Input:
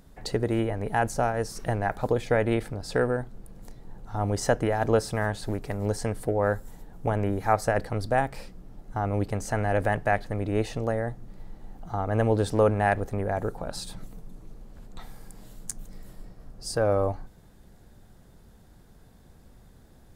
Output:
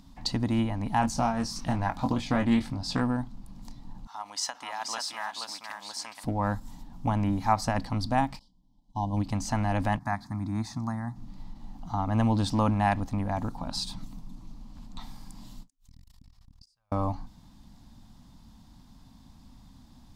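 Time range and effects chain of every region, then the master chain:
1.01–3.01 doubler 22 ms -6.5 dB + Doppler distortion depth 0.14 ms
4.07–6.24 HPF 1100 Hz + echo 0.478 s -5 dB
8.39–9.17 brick-wall FIR band-stop 1100–2900 Hz + bell 3100 Hz +4.5 dB 2.1 oct + upward expander 2.5:1, over -39 dBFS
9.99–11.16 HPF 89 Hz + fixed phaser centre 1200 Hz, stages 4
15.7–16.92 passive tone stack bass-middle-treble 10-0-10 + flipped gate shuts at -32 dBFS, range -38 dB + core saturation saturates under 320 Hz
whole clip: EQ curve 150 Hz 0 dB, 270 Hz +7 dB, 410 Hz -18 dB, 1000 Hz +6 dB, 1500 Hz -7 dB, 3000 Hz +3 dB, 4900 Hz +7 dB, 9700 Hz -5 dB; ending taper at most 340 dB/s

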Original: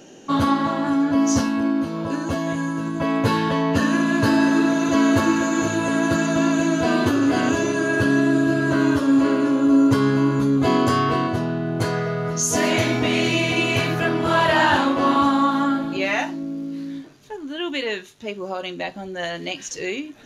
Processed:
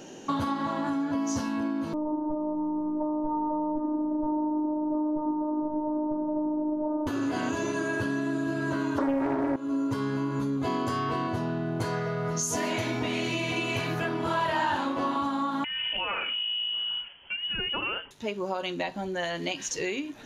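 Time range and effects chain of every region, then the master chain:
1.93–7.07 steep low-pass 1000 Hz 48 dB/oct + robotiser 304 Hz + comb 6.6 ms, depth 79%
8.98–9.56 brick-wall FIR low-pass 7400 Hz + band shelf 580 Hz +14 dB 2.9 oct + Doppler distortion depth 0.62 ms
15.64–18.11 compressor 10:1, threshold -24 dBFS + inverted band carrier 3200 Hz
whole clip: compressor, threshold -27 dBFS; bell 940 Hz +6 dB 0.23 oct

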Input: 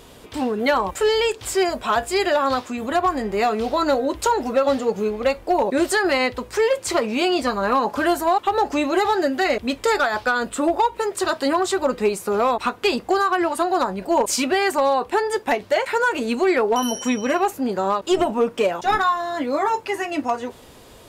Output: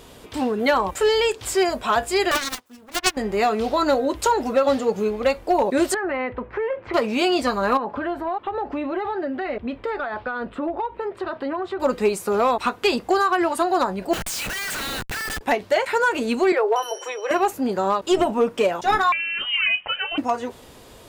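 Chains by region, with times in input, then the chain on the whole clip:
2.31–3.17 self-modulated delay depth 0.89 ms + high shelf 11000 Hz +9 dB + upward expander 2.5:1, over -33 dBFS
5.94–6.94 LPF 2200 Hz 24 dB/oct + compressor 4:1, threshold -22 dBFS
7.77–11.8 compressor 2.5:1, threshold -23 dBFS + air absorption 450 m
14.13–15.41 brick-wall FIR high-pass 1300 Hz + bell 3200 Hz +2.5 dB 0.94 oct + Schmitt trigger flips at -39 dBFS
16.52–17.31 steep high-pass 330 Hz 96 dB/oct + bell 13000 Hz -9 dB 2.9 oct
19.12–20.18 HPF 360 Hz + inverted band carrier 3400 Hz
whole clip: dry

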